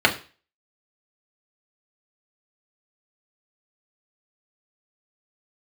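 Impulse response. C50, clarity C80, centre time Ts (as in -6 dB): 14.0 dB, 18.5 dB, 11 ms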